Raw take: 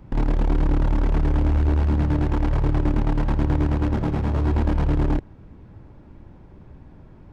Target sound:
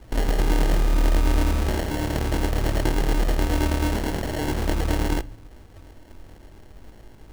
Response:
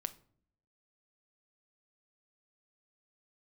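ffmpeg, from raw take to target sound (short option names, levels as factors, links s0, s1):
-filter_complex "[0:a]equalizer=f=160:w=1.3:g=-14.5,acrusher=bits=2:mode=log:mix=0:aa=0.000001,flanger=delay=17.5:depth=6.2:speed=0.4,acrusher=samples=36:mix=1:aa=0.000001,asplit=2[s0][s1];[1:a]atrim=start_sample=2205[s2];[s1][s2]afir=irnorm=-1:irlink=0,volume=0.891[s3];[s0][s3]amix=inputs=2:normalize=0"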